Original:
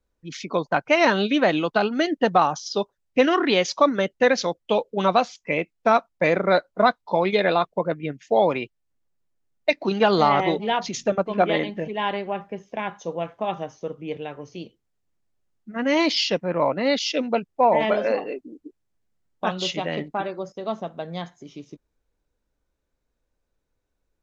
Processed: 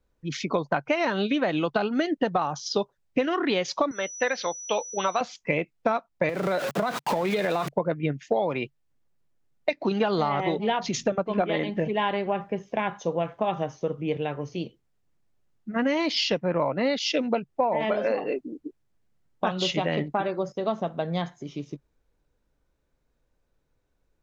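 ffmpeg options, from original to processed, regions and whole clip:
-filter_complex "[0:a]asettb=1/sr,asplit=3[a][b][c];[a]atrim=end=3.914[d];[b]atrim=start=3.91:end=5.21,asetpts=PTS-STARTPTS,afade=t=in:d=0.004:c=qsin,afade=t=out:st=1.296:d=0.004:c=qsin,aeval=exprs='val(0)+0.0282*sin(2*PI*5900*n/s)':c=same,acrossover=split=4100[e][f];[f]acompressor=threshold=-43dB:ratio=4:attack=1:release=60[g];[e][g]amix=inputs=2:normalize=0,highpass=f=1.1k:p=1[h];[c]atrim=start=5.206[i];[d][h]acrossfade=d=0.004:c1=hsin:c2=qsin[j];[j][i]acrossfade=d=0.004:c1=qsin:c2=hsin,asettb=1/sr,asplit=3[k][l][m];[k]atrim=end=6.294[n];[l]atrim=start=6.29:end=7.72,asetpts=PTS-STARTPTS,afade=t=in:d=0.004:c=qsin,afade=t=out:st=1.426:d=0.004:c=qsin,aeval=exprs='val(0)+0.5*0.0562*sgn(val(0))':c=same,highpass=f=120:w=0.5412,highpass=f=120:w=1.3066,acompressor=threshold=-23dB:ratio=6:attack=3.2:release=140:knee=1:detection=peak[o];[m]atrim=start=7.716[p];[n][o]acrossfade=d=0.004:c1=hsin:c2=qsin[q];[q][p]acrossfade=d=0.004:c1=qsin:c2=hsin,highshelf=f=4.8k:g=-5.5,acompressor=threshold=-25dB:ratio=10,equalizer=f=140:t=o:w=0.32:g=5.5,volume=4dB"

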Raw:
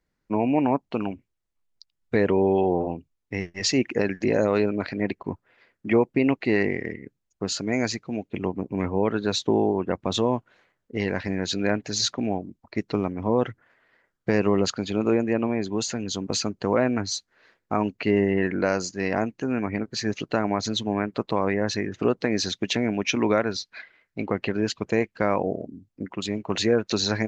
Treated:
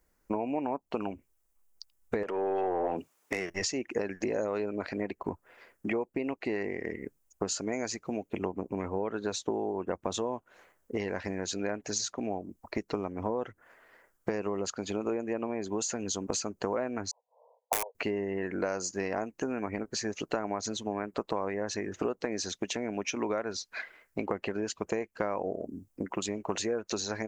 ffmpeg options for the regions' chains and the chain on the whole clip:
-filter_complex "[0:a]asettb=1/sr,asplit=3[a][b][c];[a]atrim=end=2.234[d];[b]atrim=start=2.23:end=3.5,asetpts=PTS-STARTPTS,afade=t=in:d=0.004:c=qsin,afade=t=out:st=1.266:d=0.004:c=qsin,highpass=f=98:w=0.5412,highpass=f=98:w=1.3066,acompressor=threshold=-34dB:ratio=8:attack=3.2:release=140:knee=1:detection=peak,asplit=2[e][f];[f]highpass=f=720:p=1,volume=24dB,asoftclip=type=tanh:threshold=-15.5dB[g];[e][g]amix=inputs=2:normalize=0,lowpass=f=3.2k:p=1,volume=-6dB[h];[c]atrim=start=3.496[i];[d][h]acrossfade=d=0.004:c1=hsin:c2=qsin[j];[j][i]acrossfade=d=0.004:c1=qsin:c2=hsin,asettb=1/sr,asplit=3[k][l][m];[k]atrim=end=17.114[n];[l]atrim=start=17.11:end=17.95,asetpts=PTS-STARTPTS,afade=t=in:d=0.004:c=qsin,afade=t=out:st=0.836:d=0.004:c=qsin,asuperpass=centerf=680:order=20:qfactor=1.2,aeval=exprs='(mod(11.9*val(0)+1,2)-1)/11.9':c=same[o];[m]atrim=start=17.946[p];[n][o]acrossfade=d=0.004:c1=hsin:c2=qsin[q];[q][p]acrossfade=d=0.004:c1=qsin:c2=hsin,highshelf=f=5.8k:g=9.5,acompressor=threshold=-32dB:ratio=10,equalizer=f=125:t=o:w=1:g=-11,equalizer=f=250:t=o:w=1:g=-4,equalizer=f=2k:t=o:w=1:g=-4,equalizer=f=4k:t=o:w=1:g=-10,volume=7.5dB"

